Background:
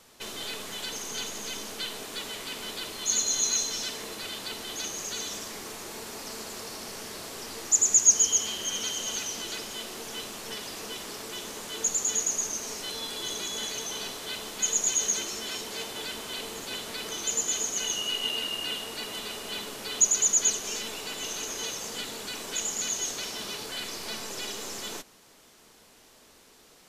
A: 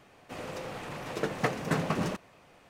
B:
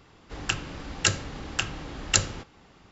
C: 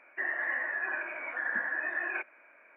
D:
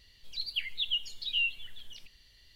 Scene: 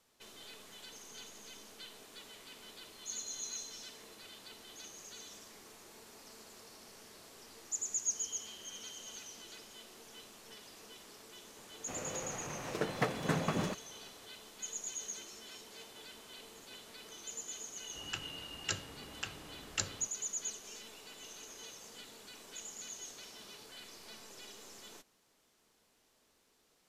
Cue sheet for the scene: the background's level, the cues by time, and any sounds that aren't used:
background -16 dB
11.58 s: add A -4 dB
17.64 s: add B -13.5 dB + high-pass 96 Hz 6 dB/octave
not used: C, D

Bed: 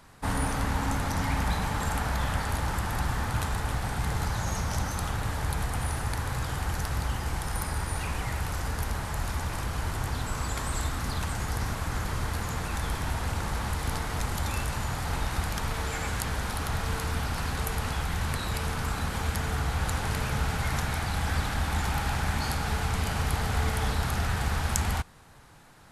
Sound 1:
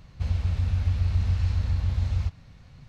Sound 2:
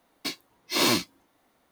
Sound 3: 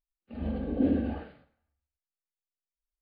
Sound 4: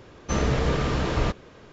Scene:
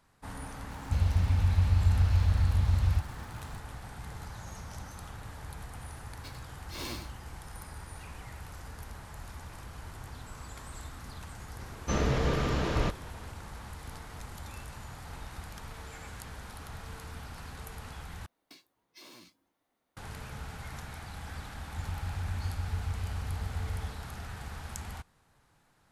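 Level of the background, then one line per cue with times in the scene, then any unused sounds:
bed -13.5 dB
0.71 s: add 1 -0.5 dB + small samples zeroed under -48 dBFS
5.99 s: add 2 -18 dB + delay 97 ms -7.5 dB
11.59 s: add 4 -4.5 dB
18.26 s: replace with 2 -13.5 dB + compression 12:1, threshold -35 dBFS
21.58 s: add 1 -10.5 dB + median filter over 5 samples
not used: 3

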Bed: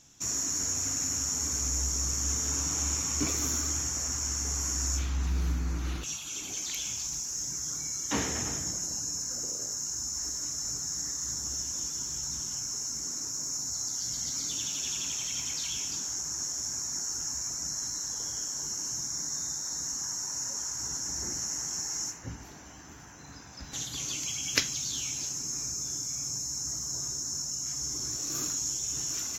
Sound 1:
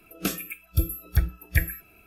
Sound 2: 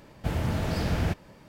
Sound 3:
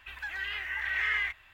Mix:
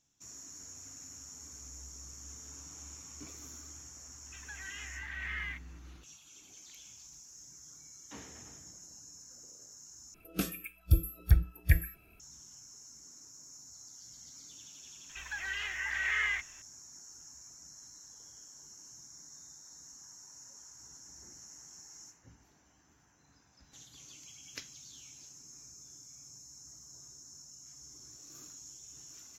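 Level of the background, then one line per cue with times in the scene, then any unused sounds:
bed -18.5 dB
4.26 s: add 3 -10 dB
10.14 s: replace with 1 -7.5 dB + bass shelf 190 Hz +7.5 dB
15.09 s: add 3 -2 dB
not used: 2

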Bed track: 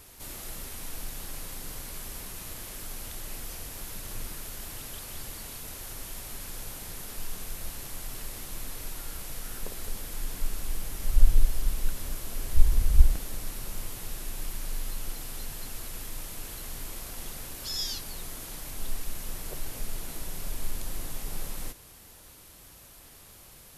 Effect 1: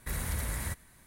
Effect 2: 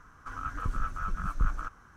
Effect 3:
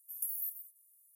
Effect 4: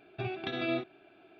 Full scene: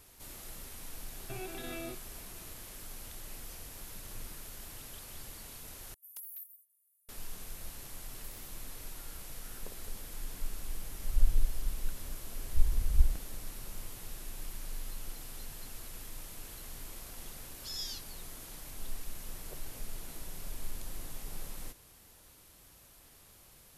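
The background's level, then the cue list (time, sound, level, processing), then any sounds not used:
bed track -7 dB
1.11 s: add 4 -3 dB + peak limiter -31 dBFS
5.94 s: replace with 3 -8 dB + wavefolder -29.5 dBFS
8.02 s: add 3 -17 dB + expander on every frequency bin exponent 3
not used: 1, 2

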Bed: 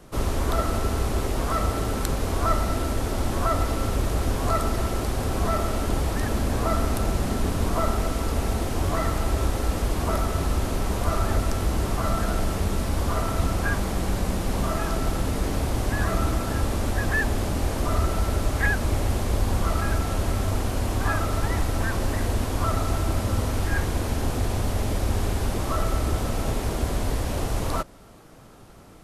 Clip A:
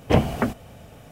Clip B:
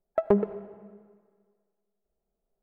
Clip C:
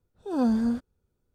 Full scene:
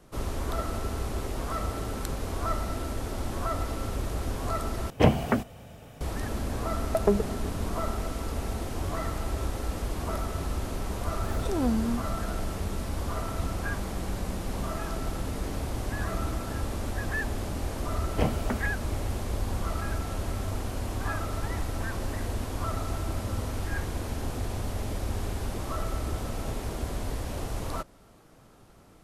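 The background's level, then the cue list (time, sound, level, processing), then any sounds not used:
bed -7 dB
4.90 s: replace with A -2 dB
6.77 s: add B -1 dB
11.23 s: add C -4 dB + swell ahead of each attack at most 41 dB/s
18.08 s: add A -9 dB

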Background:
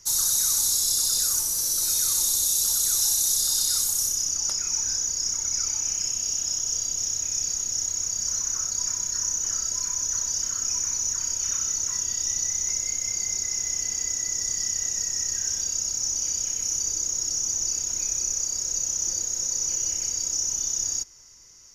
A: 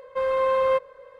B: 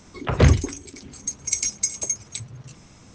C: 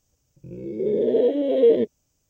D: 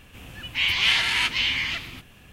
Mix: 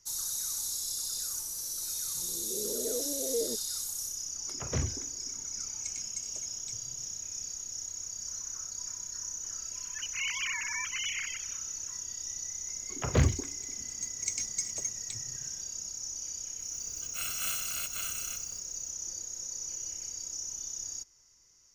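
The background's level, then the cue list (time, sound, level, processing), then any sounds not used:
background -12 dB
1.71 s: add C -17 dB
4.33 s: add B -17.5 dB + feedback echo behind a band-pass 101 ms, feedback 67%, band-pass 500 Hz, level -18.5 dB
9.59 s: add D -13 dB + formants replaced by sine waves
12.75 s: add B -9.5 dB + companding laws mixed up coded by A
16.59 s: add D -14 dB + bit-reversed sample order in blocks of 128 samples
not used: A

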